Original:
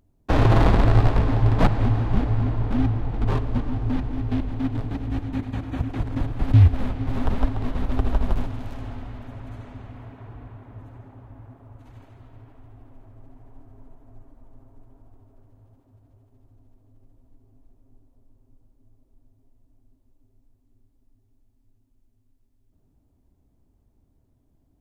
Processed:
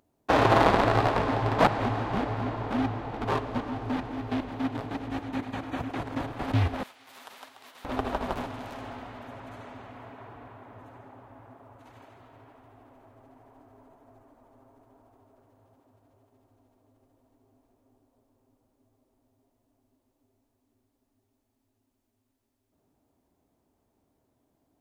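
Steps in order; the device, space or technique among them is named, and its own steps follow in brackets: 6.83–7.85 s: differentiator; filter by subtraction (in parallel: low-pass 730 Hz 12 dB/octave + polarity flip); on the sum: trim +2 dB

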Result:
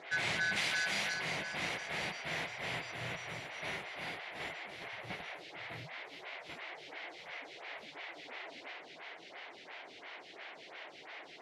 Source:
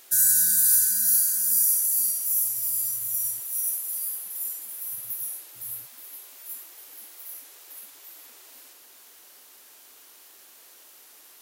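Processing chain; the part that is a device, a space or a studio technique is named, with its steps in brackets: vibe pedal into a guitar amplifier (lamp-driven phase shifter 2.9 Hz; valve stage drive 26 dB, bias 0.25; cabinet simulation 77–3600 Hz, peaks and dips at 160 Hz +9 dB, 230 Hz -4 dB, 690 Hz +6 dB, 1.2 kHz -4 dB, 2.1 kHz +9 dB); 0.56–1.14 s: tilt EQ +2 dB/octave; trim +11.5 dB

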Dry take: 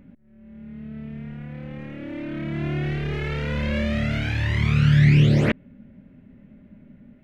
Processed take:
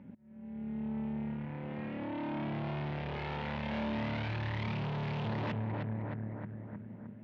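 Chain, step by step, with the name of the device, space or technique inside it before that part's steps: analogue delay pedal into a guitar amplifier (bucket-brigade echo 310 ms, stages 4096, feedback 57%, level -11 dB; valve stage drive 35 dB, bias 0.7; cabinet simulation 89–4000 Hz, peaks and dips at 100 Hz +7 dB, 210 Hz +6 dB, 620 Hz +3 dB, 910 Hz +10 dB); trim -1.5 dB

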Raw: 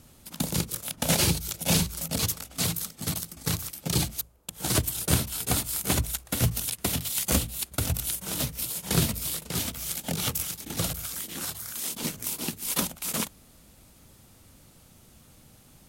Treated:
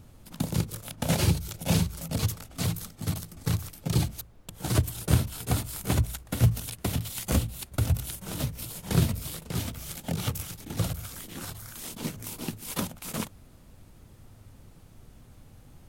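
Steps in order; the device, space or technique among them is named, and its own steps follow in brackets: car interior (peaking EQ 100 Hz +8 dB 0.87 oct; treble shelf 2.5 kHz -7.5 dB; brown noise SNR 23 dB); trim -1 dB

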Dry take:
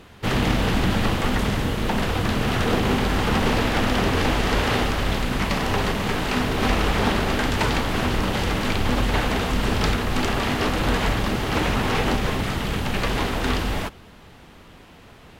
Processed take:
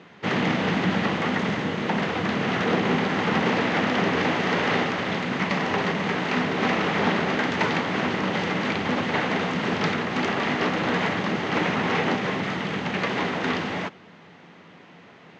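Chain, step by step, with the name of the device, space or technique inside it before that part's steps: high-pass 230 Hz 12 dB/octave; distance through air 170 m; car door speaker (cabinet simulation 90–8600 Hz, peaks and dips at 94 Hz +6 dB, 170 Hz +10 dB, 2 kHz +5 dB, 6.4 kHz +6 dB)

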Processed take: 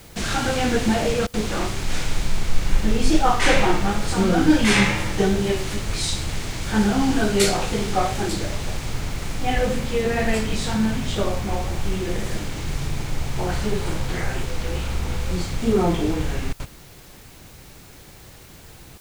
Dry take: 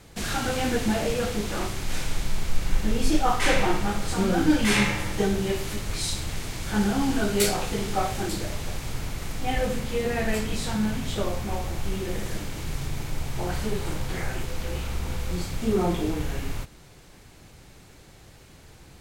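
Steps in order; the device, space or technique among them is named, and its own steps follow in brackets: worn cassette (low-pass 9.4 kHz 12 dB/octave; wow and flutter; level dips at 1.27/16.53/18.98 s, 66 ms -27 dB; white noise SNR 30 dB); trim +4.5 dB

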